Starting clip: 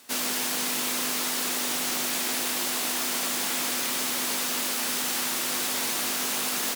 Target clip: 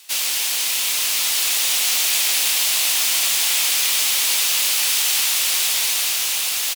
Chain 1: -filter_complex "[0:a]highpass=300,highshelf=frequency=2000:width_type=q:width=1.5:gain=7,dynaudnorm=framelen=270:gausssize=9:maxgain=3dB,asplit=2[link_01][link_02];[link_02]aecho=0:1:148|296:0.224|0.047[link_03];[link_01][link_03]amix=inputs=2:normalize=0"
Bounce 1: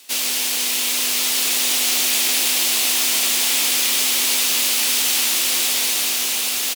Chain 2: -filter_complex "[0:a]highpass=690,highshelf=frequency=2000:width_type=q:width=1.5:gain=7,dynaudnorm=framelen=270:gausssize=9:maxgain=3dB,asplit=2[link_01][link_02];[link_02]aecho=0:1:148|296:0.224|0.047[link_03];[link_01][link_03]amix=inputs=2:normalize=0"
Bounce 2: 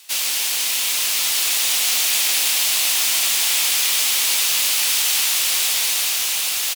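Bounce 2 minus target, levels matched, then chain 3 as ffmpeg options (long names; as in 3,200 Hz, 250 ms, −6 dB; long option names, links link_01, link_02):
echo-to-direct +10 dB
-filter_complex "[0:a]highpass=690,highshelf=frequency=2000:width_type=q:width=1.5:gain=7,dynaudnorm=framelen=270:gausssize=9:maxgain=3dB,asplit=2[link_01][link_02];[link_02]aecho=0:1:148|296:0.0708|0.0149[link_03];[link_01][link_03]amix=inputs=2:normalize=0"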